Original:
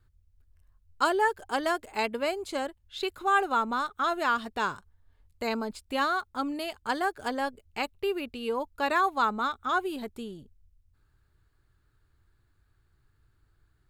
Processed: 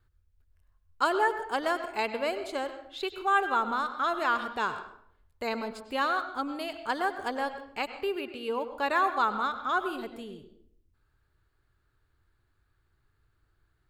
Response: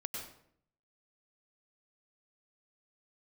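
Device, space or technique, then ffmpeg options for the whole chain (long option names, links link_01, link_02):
filtered reverb send: -filter_complex "[0:a]asettb=1/sr,asplit=3[link_01][link_02][link_03];[link_01]atrim=end=8.164[link_04];[link_02]atrim=start=8.16:end=8.68,asetpts=PTS-STARTPTS,afade=type=in:duration=0.004:curve=qsin,afade=type=out:start_time=0.516:duration=0.004:curve=qsin,highpass=89[link_05];[link_03]atrim=start=8.676[link_06];[link_04][link_05]acrossfade=duration=0.004:curve1=hsin:curve2=qsin[link_07];[link_07][link_06]acrossfade=duration=0.004:curve1=qsin:curve2=hsin,asplit=2[link_08][link_09];[link_09]highpass=280,lowpass=4800[link_10];[1:a]atrim=start_sample=2205[link_11];[link_10][link_11]afir=irnorm=-1:irlink=0,volume=-3.5dB[link_12];[link_08][link_12]amix=inputs=2:normalize=0,volume=-4dB"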